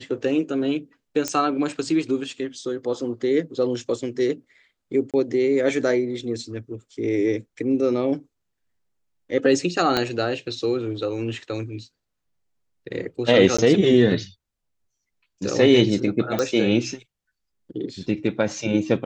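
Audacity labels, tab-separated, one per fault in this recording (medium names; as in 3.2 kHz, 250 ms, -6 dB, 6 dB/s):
1.280000	1.280000	pop -9 dBFS
5.110000	5.140000	dropout 27 ms
9.970000	9.970000	pop -7 dBFS
13.570000	13.590000	dropout 15 ms
16.390000	16.390000	pop -10 dBFS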